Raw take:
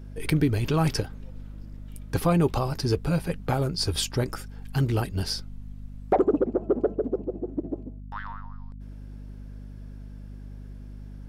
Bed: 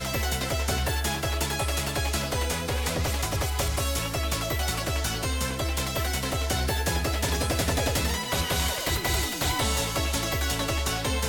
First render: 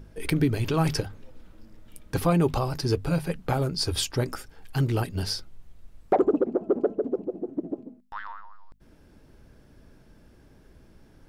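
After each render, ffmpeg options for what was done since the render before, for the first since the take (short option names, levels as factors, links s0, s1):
-af "bandreject=f=50:t=h:w=6,bandreject=f=100:t=h:w=6,bandreject=f=150:t=h:w=6,bandreject=f=200:t=h:w=6,bandreject=f=250:t=h:w=6"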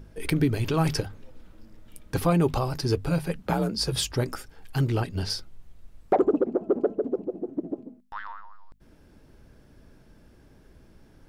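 -filter_complex "[0:a]asettb=1/sr,asplit=3[s0][s1][s2];[s0]atrim=end=3.434[s3];[s1]atrim=start=3.43:end=4.13,asetpts=PTS-STARTPTS,afade=t=in:d=0.004:c=qsin,afade=t=out:st=0.696:d=0.004:c=qsin,afreqshift=44[s4];[s2]atrim=start=4.126[s5];[s3][s4]acrossfade=d=0.004:c1=hsin:c2=qsin[s6];[s6][s5]acrossfade=d=0.004:c1=qsin:c2=hsin,asettb=1/sr,asplit=3[s7][s8][s9];[s7]atrim=end=4.854[s10];[s8]atrim=start=4.85:end=5.3,asetpts=PTS-STARTPTS,afade=t=in:d=0.004:c=qsin,afade=t=out:st=0.446:d=0.004:c=qsin,acrossover=split=7200[s11][s12];[s12]acompressor=threshold=0.00126:ratio=4:attack=1:release=60[s13];[s11][s13]amix=inputs=2:normalize=0[s14];[s9]atrim=start=5.296[s15];[s10][s14]acrossfade=d=0.004:c1=hsin:c2=qsin[s16];[s16][s15]acrossfade=d=0.004:c1=qsin:c2=hsin"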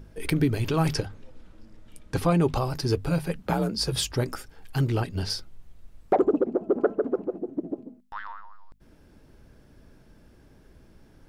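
-filter_complex "[0:a]asettb=1/sr,asplit=3[s0][s1][s2];[s0]atrim=end=0.944[s3];[s1]atrim=start=0.94:end=2.56,asetpts=PTS-STARTPTS,afade=t=in:d=0.004:c=qsin,afade=t=out:st=1.616:d=0.004:c=qsin,lowpass=10000[s4];[s2]atrim=start=2.556[s5];[s3][s4]acrossfade=d=0.004:c1=hsin:c2=qsin[s6];[s6][s5]acrossfade=d=0.004:c1=qsin:c2=hsin,asettb=1/sr,asplit=3[s7][s8][s9];[s7]atrim=end=6.784[s10];[s8]atrim=start=6.78:end=7.38,asetpts=PTS-STARTPTS,afade=t=in:d=0.004:c=qsin,afade=t=out:st=0.596:d=0.004:c=qsin,equalizer=f=1400:t=o:w=1.4:g=11.5[s11];[s9]atrim=start=7.376[s12];[s10][s11]acrossfade=d=0.004:c1=hsin:c2=qsin[s13];[s13][s12]acrossfade=d=0.004:c1=qsin:c2=hsin"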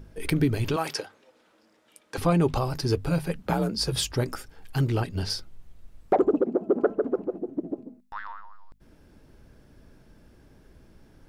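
-filter_complex "[0:a]asettb=1/sr,asplit=3[s0][s1][s2];[s0]atrim=end=0.764[s3];[s1]atrim=start=0.76:end=2.18,asetpts=PTS-STARTPTS,afade=t=in:d=0.004:c=qsin,afade=t=out:st=1.416:d=0.004:c=qsin,highpass=470[s4];[s2]atrim=start=2.176[s5];[s3][s4]acrossfade=d=0.004:c1=hsin:c2=qsin[s6];[s6][s5]acrossfade=d=0.004:c1=qsin:c2=hsin,asettb=1/sr,asplit=3[s7][s8][s9];[s7]atrim=end=6.434[s10];[s8]atrim=start=6.43:end=6.83,asetpts=PTS-STARTPTS,afade=t=in:d=0.004:c=qsin,afade=t=out:st=0.396:d=0.004:c=qsin,lowshelf=f=120:t=q:w=1.5:g=-9[s11];[s9]atrim=start=6.826[s12];[s10][s11]acrossfade=d=0.004:c1=hsin:c2=qsin[s13];[s13][s12]acrossfade=d=0.004:c1=qsin:c2=hsin,asettb=1/sr,asplit=3[s14][s15][s16];[s14]atrim=end=7.734[s17];[s15]atrim=start=7.73:end=8.24,asetpts=PTS-STARTPTS,afade=t=in:d=0.004:c=qsin,afade=t=out:st=0.506:d=0.004:c=qsin,bandreject=f=3100:w=12[s18];[s16]atrim=start=8.236[s19];[s17][s18]acrossfade=d=0.004:c1=hsin:c2=qsin[s20];[s20][s19]acrossfade=d=0.004:c1=qsin:c2=hsin"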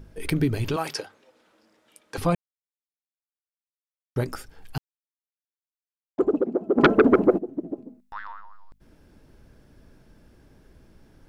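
-filter_complex "[0:a]asplit=3[s0][s1][s2];[s0]afade=t=out:st=6.77:d=0.02[s3];[s1]aeval=exprs='0.355*sin(PI/2*3.55*val(0)/0.355)':c=same,afade=t=in:st=6.77:d=0.02,afade=t=out:st=7.37:d=0.02[s4];[s2]afade=t=in:st=7.37:d=0.02[s5];[s3][s4][s5]amix=inputs=3:normalize=0,asplit=5[s6][s7][s8][s9][s10];[s6]atrim=end=2.35,asetpts=PTS-STARTPTS,afade=t=out:st=2.346:d=0.004:c=hsin[s11];[s7]atrim=start=2.35:end=4.16,asetpts=PTS-STARTPTS,volume=0[s12];[s8]atrim=start=4.16:end=4.78,asetpts=PTS-STARTPTS,afade=t=in:d=0.004:c=hsin,afade=t=out:st=0.616:d=0.004:c=hsin[s13];[s9]atrim=start=4.78:end=6.18,asetpts=PTS-STARTPTS,volume=0[s14];[s10]atrim=start=6.18,asetpts=PTS-STARTPTS,afade=t=in:d=0.004:c=hsin[s15];[s11][s12][s13][s14][s15]concat=n=5:v=0:a=1"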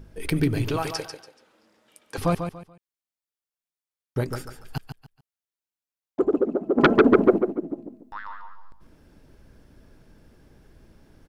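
-af "aecho=1:1:143|286|429:0.398|0.107|0.029"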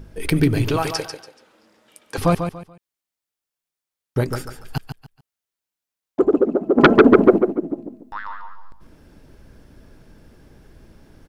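-af "volume=1.88,alimiter=limit=0.891:level=0:latency=1"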